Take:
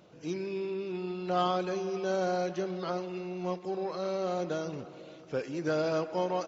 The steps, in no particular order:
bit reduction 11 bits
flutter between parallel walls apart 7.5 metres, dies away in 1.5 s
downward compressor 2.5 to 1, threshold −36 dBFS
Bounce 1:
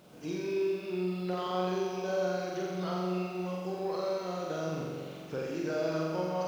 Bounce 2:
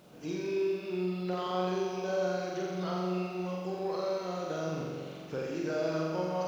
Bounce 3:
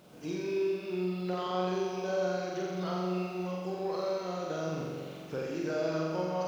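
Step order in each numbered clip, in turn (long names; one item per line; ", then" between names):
downward compressor, then bit reduction, then flutter between parallel walls
downward compressor, then flutter between parallel walls, then bit reduction
bit reduction, then downward compressor, then flutter between parallel walls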